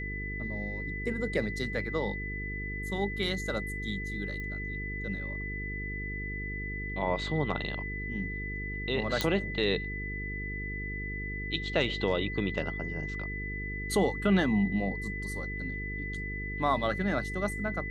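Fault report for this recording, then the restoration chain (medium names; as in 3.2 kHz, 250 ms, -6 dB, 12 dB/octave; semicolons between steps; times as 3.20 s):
buzz 50 Hz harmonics 9 -38 dBFS
whine 2 kHz -37 dBFS
4.40 s: pop -28 dBFS
9.21 s: pop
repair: de-click; de-hum 50 Hz, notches 9; band-stop 2 kHz, Q 30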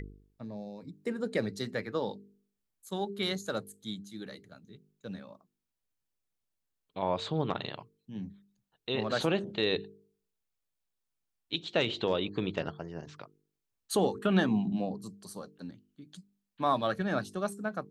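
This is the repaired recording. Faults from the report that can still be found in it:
nothing left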